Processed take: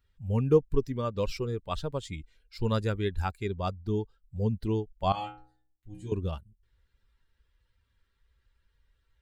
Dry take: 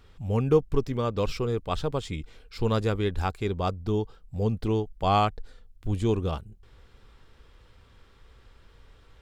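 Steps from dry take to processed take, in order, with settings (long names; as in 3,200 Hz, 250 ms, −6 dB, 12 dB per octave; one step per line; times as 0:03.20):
spectral dynamics exaggerated over time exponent 1.5
0:05.12–0:06.12: stiff-string resonator 61 Hz, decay 0.61 s, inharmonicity 0.002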